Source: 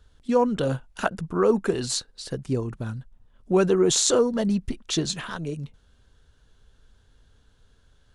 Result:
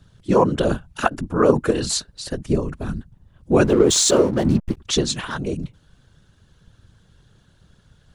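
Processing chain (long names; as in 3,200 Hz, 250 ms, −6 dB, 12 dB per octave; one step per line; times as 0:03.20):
random phases in short frames
0:03.64–0:04.77: slack as between gear wheels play −33 dBFS
level +5 dB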